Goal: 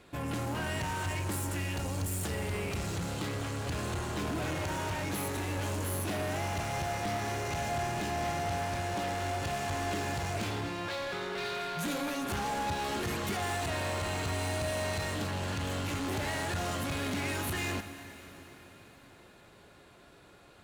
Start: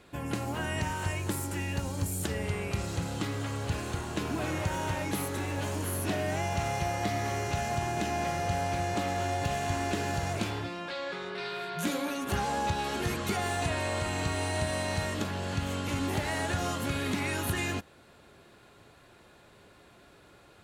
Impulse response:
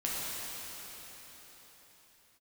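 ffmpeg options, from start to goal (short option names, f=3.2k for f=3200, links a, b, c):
-filter_complex "[0:a]asoftclip=type=tanh:threshold=-34dB,aeval=exprs='0.02*(cos(1*acos(clip(val(0)/0.02,-1,1)))-cos(1*PI/2))+0.00112*(cos(7*acos(clip(val(0)/0.02,-1,1)))-cos(7*PI/2))':c=same,asplit=2[a][b];[1:a]atrim=start_sample=2205,adelay=24[c];[b][c]afir=irnorm=-1:irlink=0,volume=-16dB[d];[a][d]amix=inputs=2:normalize=0,volume=3dB"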